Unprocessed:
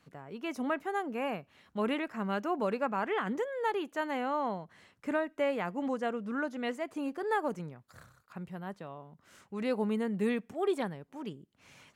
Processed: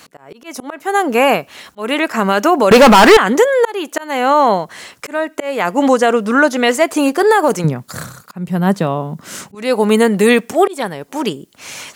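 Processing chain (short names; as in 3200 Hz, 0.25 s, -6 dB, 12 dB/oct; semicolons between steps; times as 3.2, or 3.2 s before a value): auto swell 0.438 s; tone controls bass -10 dB, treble +9 dB; 2.71–3.17 sample leveller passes 5; 7.64–9.55 bell 170 Hz +14.5 dB 1.7 oct; maximiser +25.5 dB; gain -1 dB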